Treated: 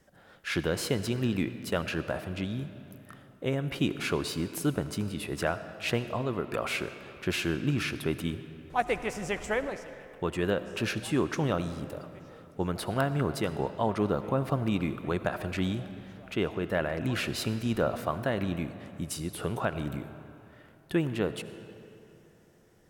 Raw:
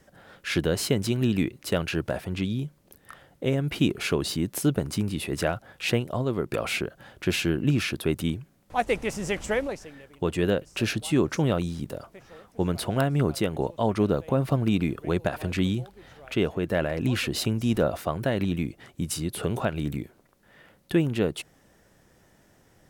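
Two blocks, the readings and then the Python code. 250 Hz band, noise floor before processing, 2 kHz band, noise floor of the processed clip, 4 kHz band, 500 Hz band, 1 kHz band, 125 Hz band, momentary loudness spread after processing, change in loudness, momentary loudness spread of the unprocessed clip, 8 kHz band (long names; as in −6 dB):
−5.0 dB, −61 dBFS, −2.0 dB, −57 dBFS, −4.5 dB, −3.5 dB, −1.0 dB, −5.0 dB, 12 LU, −4.0 dB, 8 LU, −5.5 dB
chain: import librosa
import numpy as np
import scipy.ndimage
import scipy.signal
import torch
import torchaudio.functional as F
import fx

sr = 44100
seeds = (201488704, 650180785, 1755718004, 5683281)

y = fx.dynamic_eq(x, sr, hz=1200.0, q=0.89, threshold_db=-41.0, ratio=4.0, max_db=6)
y = fx.rev_freeverb(y, sr, rt60_s=3.0, hf_ratio=0.65, predelay_ms=40, drr_db=11.5)
y = F.gain(torch.from_numpy(y), -5.5).numpy()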